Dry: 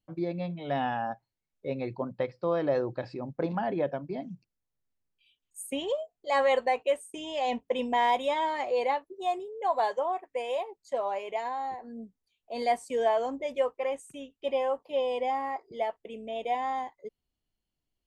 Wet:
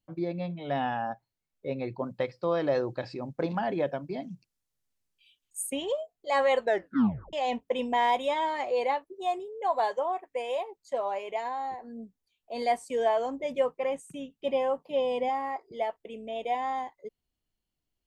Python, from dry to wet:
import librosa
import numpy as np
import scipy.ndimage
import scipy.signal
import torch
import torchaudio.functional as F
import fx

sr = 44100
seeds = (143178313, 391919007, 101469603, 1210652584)

y = fx.peak_eq(x, sr, hz=8000.0, db=7.0, octaves=3.0, at=(2.03, 5.7))
y = fx.peak_eq(y, sr, hz=170.0, db=13.5, octaves=0.94, at=(13.43, 15.29))
y = fx.edit(y, sr, fx.tape_stop(start_s=6.61, length_s=0.72), tone=tone)